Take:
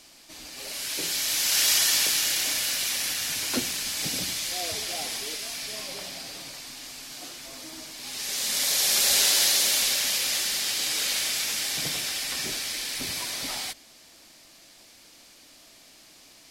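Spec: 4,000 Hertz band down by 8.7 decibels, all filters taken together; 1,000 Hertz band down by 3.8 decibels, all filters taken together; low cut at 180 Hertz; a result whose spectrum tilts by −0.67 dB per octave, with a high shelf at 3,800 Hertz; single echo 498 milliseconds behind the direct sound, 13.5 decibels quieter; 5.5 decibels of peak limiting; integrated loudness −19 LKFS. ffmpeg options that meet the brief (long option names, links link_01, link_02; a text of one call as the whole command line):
ffmpeg -i in.wav -af "highpass=180,equalizer=frequency=1000:width_type=o:gain=-4.5,highshelf=frequency=3800:gain=-6.5,equalizer=frequency=4000:width_type=o:gain=-6.5,alimiter=limit=-22dB:level=0:latency=1,aecho=1:1:498:0.211,volume=13.5dB" out.wav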